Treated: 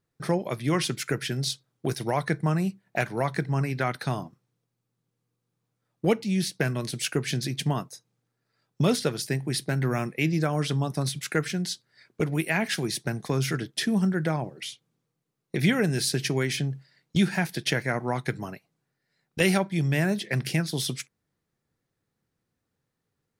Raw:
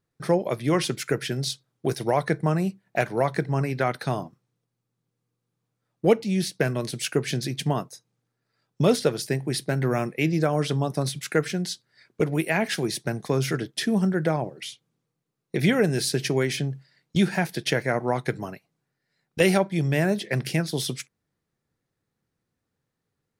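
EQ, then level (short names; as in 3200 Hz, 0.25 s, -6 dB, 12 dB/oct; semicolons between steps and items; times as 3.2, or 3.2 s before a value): dynamic EQ 520 Hz, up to -6 dB, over -36 dBFS, Q 1; 0.0 dB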